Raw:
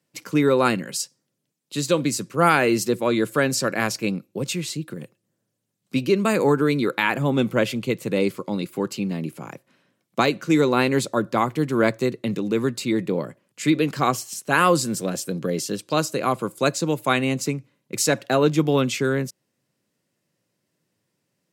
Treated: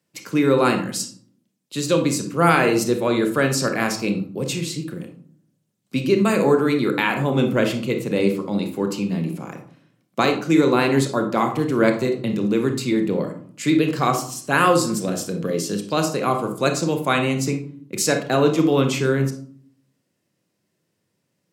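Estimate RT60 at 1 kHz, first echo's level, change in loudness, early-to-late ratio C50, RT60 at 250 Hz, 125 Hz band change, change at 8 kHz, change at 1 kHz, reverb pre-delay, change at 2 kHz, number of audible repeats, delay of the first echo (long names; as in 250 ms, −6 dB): 0.50 s, no echo audible, +2.0 dB, 8.5 dB, 0.90 s, +2.5 dB, +0.5 dB, +1.5 dB, 25 ms, +1.0 dB, no echo audible, no echo audible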